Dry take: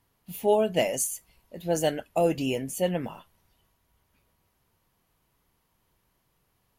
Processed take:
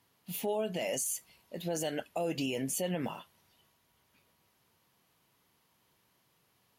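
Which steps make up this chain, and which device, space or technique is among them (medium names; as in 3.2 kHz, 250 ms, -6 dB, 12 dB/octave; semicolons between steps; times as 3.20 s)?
broadcast voice chain (high-pass 120 Hz 12 dB/octave; de-esser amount 40%; compression, threshold -25 dBFS, peak gain reduction 9 dB; peaking EQ 3.9 kHz +4.5 dB 2 oct; peak limiter -24 dBFS, peak gain reduction 10 dB)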